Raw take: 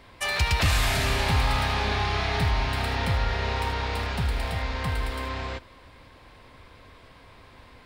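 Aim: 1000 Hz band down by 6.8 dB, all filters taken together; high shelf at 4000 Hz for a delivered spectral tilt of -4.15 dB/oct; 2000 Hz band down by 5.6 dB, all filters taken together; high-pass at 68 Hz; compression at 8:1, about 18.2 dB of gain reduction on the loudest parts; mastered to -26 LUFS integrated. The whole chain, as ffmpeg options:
-af "highpass=68,equalizer=f=1k:t=o:g=-7.5,equalizer=f=2k:t=o:g=-7,highshelf=f=4k:g=7.5,acompressor=threshold=-40dB:ratio=8,volume=17.5dB"

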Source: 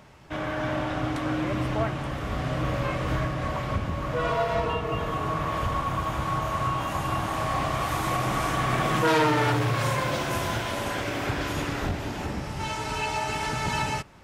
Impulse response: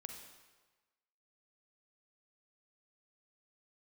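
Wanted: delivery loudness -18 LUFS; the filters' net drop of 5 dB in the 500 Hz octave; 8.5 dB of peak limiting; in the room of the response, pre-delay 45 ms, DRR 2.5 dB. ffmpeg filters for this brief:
-filter_complex "[0:a]equalizer=f=500:t=o:g=-6.5,alimiter=limit=-23dB:level=0:latency=1,asplit=2[a][b];[1:a]atrim=start_sample=2205,adelay=45[c];[b][c]afir=irnorm=-1:irlink=0,volume=1.5dB[d];[a][d]amix=inputs=2:normalize=0,volume=12dB"

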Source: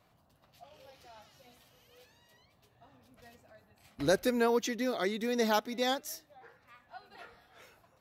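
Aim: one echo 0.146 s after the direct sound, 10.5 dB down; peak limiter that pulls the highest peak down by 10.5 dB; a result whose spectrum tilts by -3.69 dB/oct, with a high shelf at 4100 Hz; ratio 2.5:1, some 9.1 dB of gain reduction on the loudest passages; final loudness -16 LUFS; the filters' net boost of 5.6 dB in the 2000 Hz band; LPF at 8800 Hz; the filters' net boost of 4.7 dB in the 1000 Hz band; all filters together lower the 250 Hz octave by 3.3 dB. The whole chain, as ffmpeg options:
-af "lowpass=8.8k,equalizer=f=250:t=o:g=-4,equalizer=f=1k:t=o:g=5.5,equalizer=f=2k:t=o:g=6,highshelf=f=4.1k:g=-4,acompressor=threshold=-35dB:ratio=2.5,alimiter=level_in=7dB:limit=-24dB:level=0:latency=1,volume=-7dB,aecho=1:1:146:0.299,volume=27dB"

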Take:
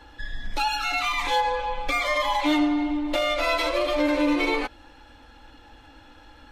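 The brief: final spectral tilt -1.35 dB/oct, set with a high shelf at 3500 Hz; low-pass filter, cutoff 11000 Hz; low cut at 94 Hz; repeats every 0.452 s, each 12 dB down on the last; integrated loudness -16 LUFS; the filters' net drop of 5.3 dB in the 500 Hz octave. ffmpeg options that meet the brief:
-af "highpass=94,lowpass=11k,equalizer=f=500:t=o:g=-7,highshelf=f=3.5k:g=7,aecho=1:1:452|904|1356:0.251|0.0628|0.0157,volume=8dB"

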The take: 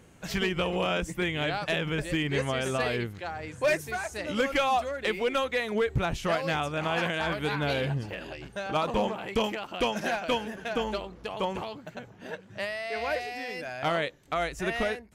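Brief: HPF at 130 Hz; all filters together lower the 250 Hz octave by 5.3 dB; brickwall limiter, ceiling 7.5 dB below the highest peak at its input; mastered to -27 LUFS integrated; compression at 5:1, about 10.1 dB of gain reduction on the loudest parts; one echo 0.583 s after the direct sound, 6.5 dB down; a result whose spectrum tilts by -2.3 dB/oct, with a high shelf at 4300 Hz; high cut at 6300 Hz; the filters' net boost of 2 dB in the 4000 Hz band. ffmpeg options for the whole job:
-af "highpass=130,lowpass=6.3k,equalizer=f=250:t=o:g=-7,equalizer=f=4k:t=o:g=6,highshelf=f=4.3k:g=-5.5,acompressor=threshold=-34dB:ratio=5,alimiter=level_in=3.5dB:limit=-24dB:level=0:latency=1,volume=-3.5dB,aecho=1:1:583:0.473,volume=11dB"

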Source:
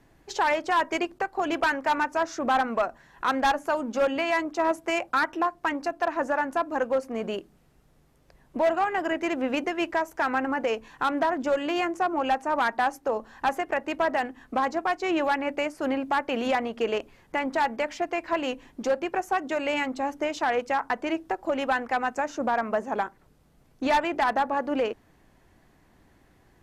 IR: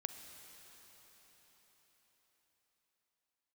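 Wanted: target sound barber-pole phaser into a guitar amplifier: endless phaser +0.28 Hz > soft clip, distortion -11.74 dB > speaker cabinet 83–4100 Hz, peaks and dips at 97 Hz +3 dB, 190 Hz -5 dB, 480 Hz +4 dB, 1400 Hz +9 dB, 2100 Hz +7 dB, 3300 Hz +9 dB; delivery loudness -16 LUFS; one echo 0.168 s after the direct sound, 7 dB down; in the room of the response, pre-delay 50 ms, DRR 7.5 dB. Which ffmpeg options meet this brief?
-filter_complex "[0:a]aecho=1:1:168:0.447,asplit=2[a][b];[1:a]atrim=start_sample=2205,adelay=50[c];[b][c]afir=irnorm=-1:irlink=0,volume=-6dB[d];[a][d]amix=inputs=2:normalize=0,asplit=2[e][f];[f]afreqshift=0.28[g];[e][g]amix=inputs=2:normalize=1,asoftclip=threshold=-25dB,highpass=83,equalizer=f=97:t=q:w=4:g=3,equalizer=f=190:t=q:w=4:g=-5,equalizer=f=480:t=q:w=4:g=4,equalizer=f=1.4k:t=q:w=4:g=9,equalizer=f=2.1k:t=q:w=4:g=7,equalizer=f=3.3k:t=q:w=4:g=9,lowpass=f=4.1k:w=0.5412,lowpass=f=4.1k:w=1.3066,volume=12.5dB"

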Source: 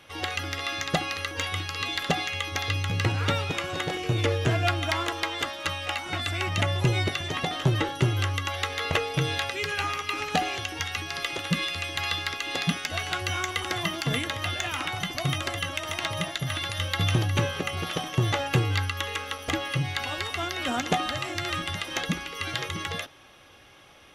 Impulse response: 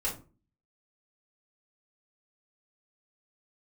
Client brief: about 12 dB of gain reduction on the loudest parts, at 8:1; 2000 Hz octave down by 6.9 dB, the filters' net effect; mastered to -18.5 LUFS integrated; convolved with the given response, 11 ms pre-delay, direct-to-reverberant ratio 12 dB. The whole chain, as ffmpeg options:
-filter_complex "[0:a]equalizer=f=2k:t=o:g=-9,acompressor=threshold=-32dB:ratio=8,asplit=2[a][b];[1:a]atrim=start_sample=2205,adelay=11[c];[b][c]afir=irnorm=-1:irlink=0,volume=-17dB[d];[a][d]amix=inputs=2:normalize=0,volume=17dB"

